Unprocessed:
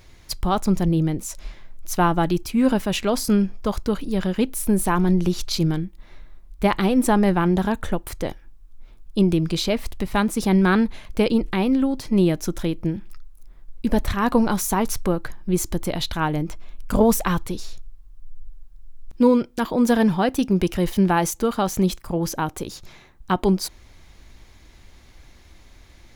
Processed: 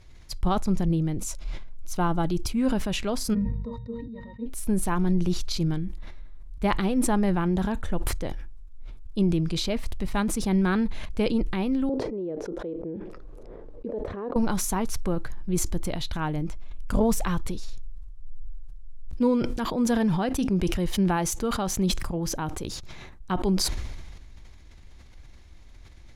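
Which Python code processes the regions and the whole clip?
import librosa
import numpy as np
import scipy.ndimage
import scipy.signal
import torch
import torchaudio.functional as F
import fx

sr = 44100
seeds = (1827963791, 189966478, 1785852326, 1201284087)

y = fx.chain(x, sr, fx.dynamic_eq(hz=2500.0, q=5.0, threshold_db=-50.0, ratio=4.0, max_db=-5),
    fx.notch(hz=1800.0, q=7.4), at=(1.16, 2.55))
y = fx.octave_resonator(y, sr, note='A#', decay_s=0.21, at=(3.33, 4.45), fade=0.02)
y = fx.dmg_buzz(y, sr, base_hz=50.0, harmonics=4, level_db=-56.0, tilt_db=-5, odd_only=False, at=(3.33, 4.45), fade=0.02)
y = fx.chain(y, sr, fx.bandpass_q(hz=460.0, q=5.1),
    fx.env_flatten(amount_pct=70), at=(11.89, 14.36))
y = scipy.signal.sosfilt(scipy.signal.butter(2, 11000.0, 'lowpass', fs=sr, output='sos'), y)
y = fx.low_shelf(y, sr, hz=130.0, db=8.0)
y = fx.sustainer(y, sr, db_per_s=32.0)
y = y * librosa.db_to_amplitude(-8.0)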